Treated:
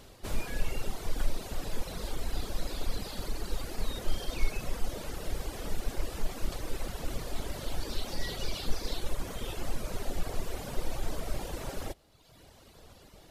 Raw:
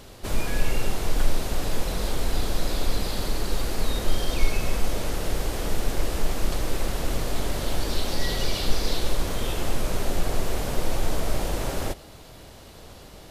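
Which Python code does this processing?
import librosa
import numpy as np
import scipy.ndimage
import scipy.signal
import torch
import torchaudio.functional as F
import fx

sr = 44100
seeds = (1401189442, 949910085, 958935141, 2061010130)

y = fx.dereverb_blind(x, sr, rt60_s=1.2)
y = y * 10.0 ** (-6.5 / 20.0)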